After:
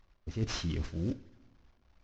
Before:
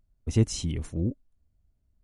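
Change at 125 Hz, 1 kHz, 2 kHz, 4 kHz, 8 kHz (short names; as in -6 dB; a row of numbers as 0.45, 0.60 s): -8.0 dB, n/a, +2.0 dB, -2.0 dB, -9.5 dB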